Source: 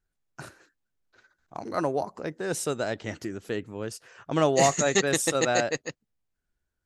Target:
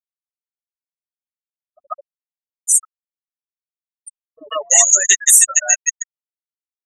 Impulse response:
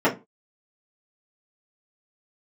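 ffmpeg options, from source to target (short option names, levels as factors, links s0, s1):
-filter_complex "[0:a]asuperstop=centerf=4600:order=12:qfactor=2.4,bandreject=f=60:t=h:w=6,bandreject=f=120:t=h:w=6,bandreject=f=180:t=h:w=6,bandreject=f=240:t=h:w=6,bandreject=f=300:t=h:w=6,bandreject=f=360:t=h:w=6,bandreject=f=420:t=h:w=6,bandreject=f=480:t=h:w=6,adynamicequalizer=threshold=0.0224:dfrequency=590:dqfactor=0.93:tfrequency=590:tqfactor=0.93:attack=5:release=100:ratio=0.375:range=2:mode=cutabove:tftype=bell,aeval=exprs='0.708*(cos(1*acos(clip(val(0)/0.708,-1,1)))-cos(1*PI/2))+0.0631*(cos(6*acos(clip(val(0)/0.708,-1,1)))-cos(6*PI/2))+0.0398*(cos(8*acos(clip(val(0)/0.708,-1,1)))-cos(8*PI/2))':c=same,asoftclip=type=hard:threshold=0.188,aderivative,acrusher=bits=6:mix=0:aa=0.000001,asplit=2[s0][s1];[1:a]atrim=start_sample=2205,lowshelf=f=160:g=-10.5[s2];[s1][s2]afir=irnorm=-1:irlink=0,volume=0.0224[s3];[s0][s3]amix=inputs=2:normalize=0,afftfilt=real='re*gte(hypot(re,im),0.0355)':imag='im*gte(hypot(re,im),0.0355)':win_size=1024:overlap=0.75,acrossover=split=370[s4][s5];[s5]adelay=140[s6];[s4][s6]amix=inputs=2:normalize=0,apsyclip=17.8,volume=0.794"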